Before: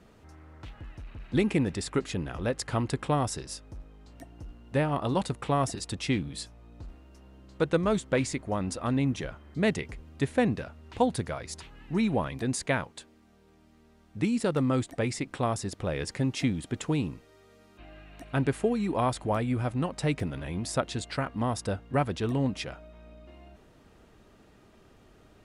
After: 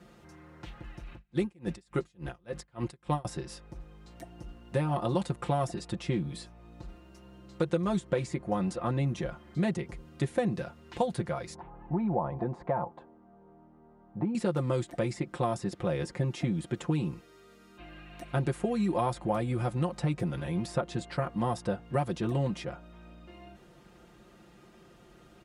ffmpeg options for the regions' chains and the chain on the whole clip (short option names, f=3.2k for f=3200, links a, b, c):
-filter_complex "[0:a]asettb=1/sr,asplit=3[a][b][c];[a]atrim=end=1.134[d];[b]atrim=start=1.13:end=3.25,asetpts=PTS-STARTPTS,afade=t=in:d=0.004:c=qsin,afade=t=out:st=2.116:d=0.004:c=qsin,aeval=exprs='val(0)+0.00708*(sin(2*PI*50*n/s)+sin(2*PI*2*50*n/s)/2+sin(2*PI*3*50*n/s)/3+sin(2*PI*4*50*n/s)/4+sin(2*PI*5*50*n/s)/5)':c=same,aeval=exprs='val(0)*pow(10,-36*(0.5-0.5*cos(2*PI*3.5*n/s))/20)':c=same[e];[c]atrim=start=3.246[f];[d][e]acrossfade=d=0.004:c1=hsin:c2=qsin[g];[g][f]acrossfade=d=0.004:c1=qsin:c2=hsin,asettb=1/sr,asplit=3[h][i][j];[h]atrim=end=11.554[k];[i]atrim=start=11.55:end=14.35,asetpts=PTS-STARTPTS,afade=t=in:d=0.004:c=qsin,afade=t=out:st=2.796:d=0.004:c=qsin,acompressor=threshold=-29dB:ratio=2.5:attack=3.2:release=140:knee=1:detection=peak,lowpass=f=850:t=q:w=3.2[l];[j]atrim=start=14.346[m];[k][l]acrossfade=d=0.004:c1=hsin:c2=qsin[n];[n][m]acrossfade=d=0.004:c1=qsin:c2=hsin,highpass=44,aecho=1:1:5.7:0.78,acrossover=split=1400|3500[o][p][q];[o]acompressor=threshold=-25dB:ratio=4[r];[p]acompressor=threshold=-51dB:ratio=4[s];[q]acompressor=threshold=-50dB:ratio=4[t];[r][s][t]amix=inputs=3:normalize=0"